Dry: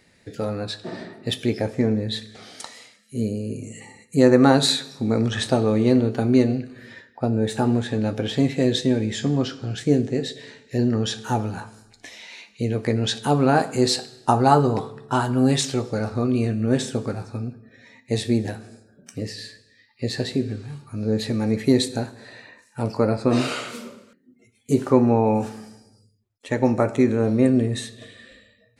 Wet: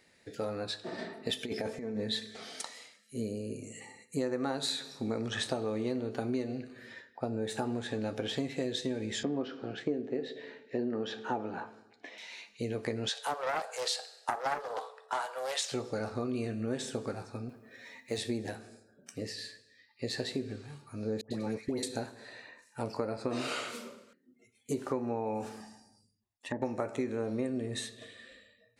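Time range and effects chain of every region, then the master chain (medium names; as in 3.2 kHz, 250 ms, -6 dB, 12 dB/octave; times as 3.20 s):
0.98–2.62 s: compressor with a negative ratio -24 dBFS, ratio -0.5 + comb 4.5 ms, depth 38%
9.23–12.18 s: band-pass 290–2800 Hz + bass shelf 450 Hz +10.5 dB
13.09–15.72 s: steep high-pass 470 Hz 72 dB/octave + loudspeaker Doppler distortion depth 0.34 ms
17.49–18.18 s: companding laws mixed up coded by mu + bass shelf 220 Hz -7 dB
21.21–21.83 s: gate -24 dBFS, range -13 dB + compression 3:1, threshold -18 dBFS + phase dispersion highs, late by 100 ms, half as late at 1.2 kHz
25.60–26.62 s: low-pass that closes with the level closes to 620 Hz, closed at -23.5 dBFS + peaking EQ 110 Hz -7.5 dB 0.48 oct + comb 1.1 ms, depth 69%
whole clip: tone controls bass -8 dB, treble 0 dB; compression 6:1, threshold -24 dBFS; trim -5.5 dB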